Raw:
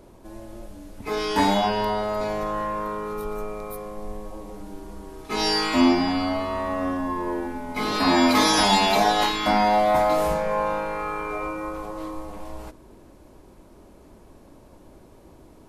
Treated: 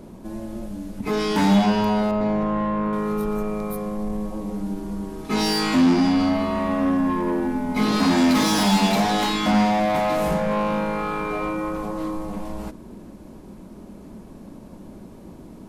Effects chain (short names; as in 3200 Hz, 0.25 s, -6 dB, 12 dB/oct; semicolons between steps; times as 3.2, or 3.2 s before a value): 2.11–2.93 LPF 1400 Hz 6 dB/oct; soft clip -23.5 dBFS, distortion -8 dB; bell 200 Hz +13.5 dB 0.81 oct; ending taper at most 250 dB/s; gain +3.5 dB